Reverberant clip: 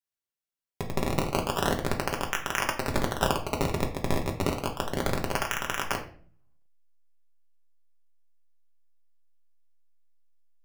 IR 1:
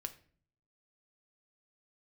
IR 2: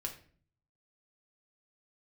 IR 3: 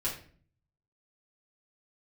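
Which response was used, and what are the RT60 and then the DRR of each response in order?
2; 0.50 s, 0.45 s, 0.45 s; 7.0 dB, 1.0 dB, -8.0 dB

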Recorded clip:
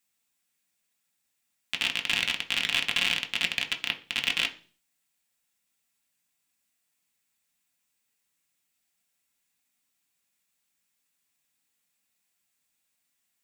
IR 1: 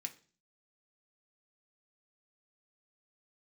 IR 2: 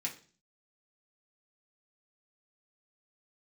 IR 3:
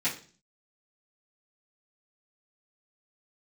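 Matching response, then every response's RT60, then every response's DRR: 1; 0.40 s, 0.40 s, 0.40 s; 4.0 dB, -3.0 dB, -12.5 dB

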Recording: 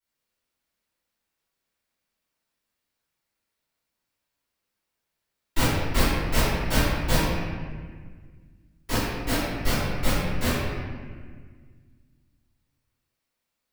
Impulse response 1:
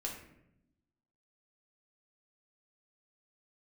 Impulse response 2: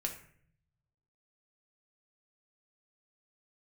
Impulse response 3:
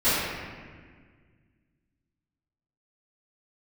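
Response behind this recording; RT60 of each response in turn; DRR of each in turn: 3; 0.80 s, 0.60 s, 1.7 s; -2.0 dB, 2.0 dB, -16.5 dB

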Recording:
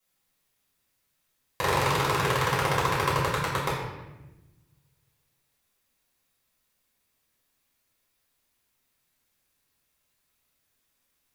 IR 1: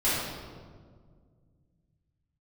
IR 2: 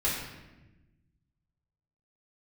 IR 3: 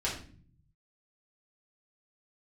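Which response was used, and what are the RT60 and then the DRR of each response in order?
2; 1.8 s, 1.1 s, 0.45 s; -12.5 dB, -8.5 dB, -7.5 dB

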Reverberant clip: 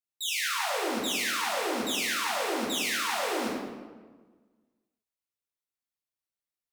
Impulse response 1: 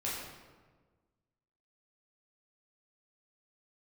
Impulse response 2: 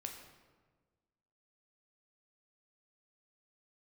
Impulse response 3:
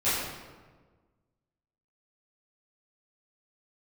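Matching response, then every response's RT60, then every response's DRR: 1; 1.4 s, 1.4 s, 1.4 s; -7.0 dB, 2.5 dB, -15.0 dB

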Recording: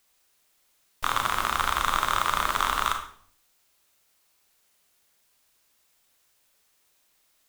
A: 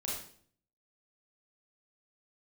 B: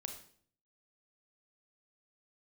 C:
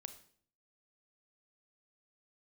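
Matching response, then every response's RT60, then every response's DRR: B; 0.55 s, 0.55 s, 0.55 s; -5.0 dB, 4.5 dB, 9.0 dB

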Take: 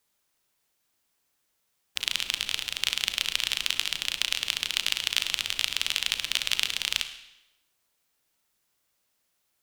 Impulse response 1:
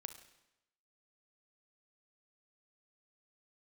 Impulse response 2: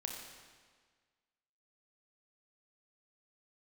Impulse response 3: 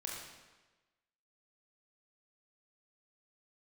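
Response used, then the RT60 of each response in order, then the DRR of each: 1; 0.90 s, 1.6 s, 1.2 s; 8.5 dB, 1.0 dB, -2.5 dB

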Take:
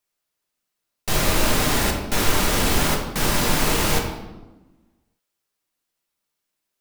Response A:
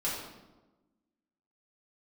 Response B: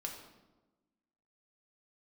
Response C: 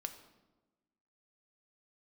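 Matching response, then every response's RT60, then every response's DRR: B; 1.1 s, 1.1 s, 1.2 s; -8.5 dB, 0.5 dB, 7.0 dB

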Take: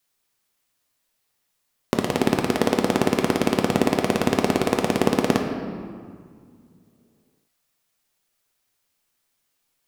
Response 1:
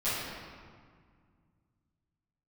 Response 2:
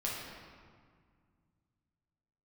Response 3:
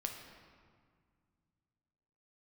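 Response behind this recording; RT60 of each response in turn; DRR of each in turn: 3; 1.9 s, 1.9 s, 1.9 s; -15.5 dB, -5.5 dB, 2.5 dB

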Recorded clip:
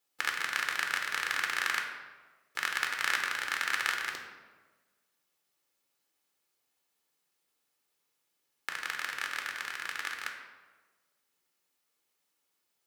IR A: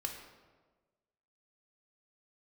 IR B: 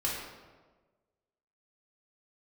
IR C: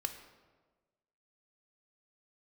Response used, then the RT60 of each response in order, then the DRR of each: A; 1.4 s, 1.4 s, 1.4 s; 2.0 dB, -5.5 dB, 6.5 dB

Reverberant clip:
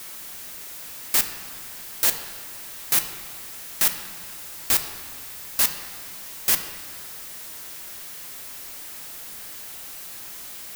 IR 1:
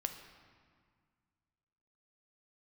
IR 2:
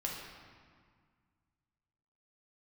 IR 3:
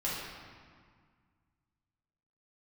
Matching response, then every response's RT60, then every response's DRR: 1; 1.9 s, 1.9 s, 1.8 s; 6.0 dB, -2.5 dB, -8.0 dB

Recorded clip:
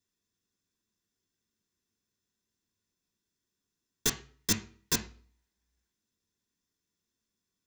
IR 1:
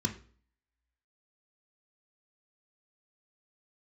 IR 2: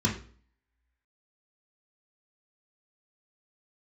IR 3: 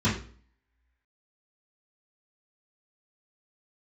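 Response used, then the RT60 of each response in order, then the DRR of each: 1; 0.45 s, 0.45 s, 0.45 s; 4.5 dB, -2.0 dB, -11.0 dB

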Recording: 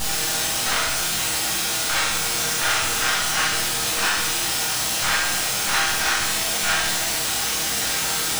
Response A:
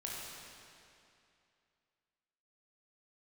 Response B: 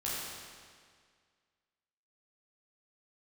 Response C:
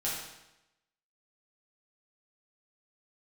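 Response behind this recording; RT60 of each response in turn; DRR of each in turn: C; 2.6 s, 1.9 s, 0.90 s; -5.0 dB, -8.0 dB, -7.5 dB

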